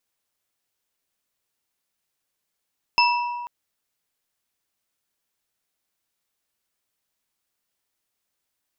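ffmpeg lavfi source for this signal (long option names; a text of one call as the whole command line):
ffmpeg -f lavfi -i "aevalsrc='0.168*pow(10,-3*t/1.81)*sin(2*PI*965*t)+0.141*pow(10,-3*t/0.89)*sin(2*PI*2660.5*t)+0.119*pow(10,-3*t/0.556)*sin(2*PI*5214.9*t)':duration=0.49:sample_rate=44100" out.wav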